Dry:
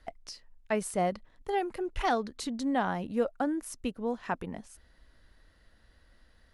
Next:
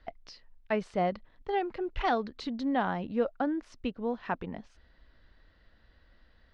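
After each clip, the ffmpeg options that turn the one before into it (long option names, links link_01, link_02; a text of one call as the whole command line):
ffmpeg -i in.wav -af "lowpass=frequency=4500:width=0.5412,lowpass=frequency=4500:width=1.3066" out.wav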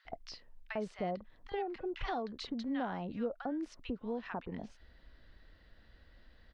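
ffmpeg -i in.wav -filter_complex "[0:a]acompressor=threshold=-41dB:ratio=2,acrossover=split=1100[link_01][link_02];[link_01]adelay=50[link_03];[link_03][link_02]amix=inputs=2:normalize=0,volume=1.5dB" out.wav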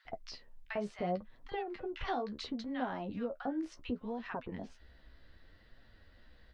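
ffmpeg -i in.wav -af "flanger=delay=7.1:depth=9.2:regen=30:speed=0.69:shape=triangular,volume=4.5dB" out.wav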